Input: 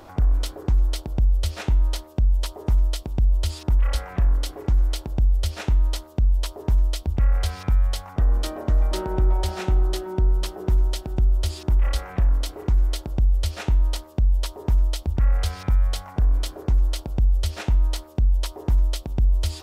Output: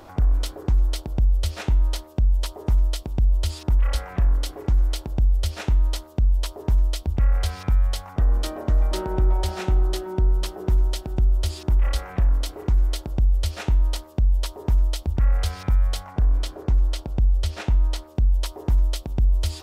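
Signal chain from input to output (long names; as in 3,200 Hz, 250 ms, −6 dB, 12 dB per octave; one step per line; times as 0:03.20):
0:16.03–0:18.13: high-shelf EQ 8,200 Hz −7 dB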